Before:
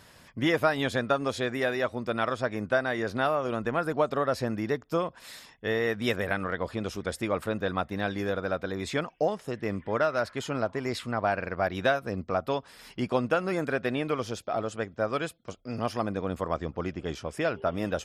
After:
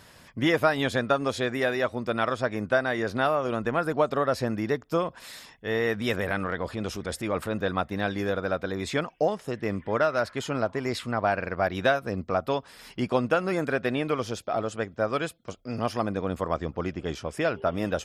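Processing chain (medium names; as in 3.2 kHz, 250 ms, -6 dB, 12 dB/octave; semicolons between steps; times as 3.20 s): 5.03–7.62 s: transient shaper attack -5 dB, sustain +2 dB; trim +2 dB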